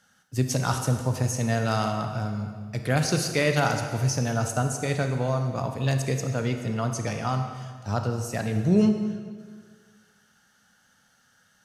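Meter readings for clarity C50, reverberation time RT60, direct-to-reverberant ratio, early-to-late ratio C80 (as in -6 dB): 6.5 dB, 1.7 s, 5.5 dB, 7.5 dB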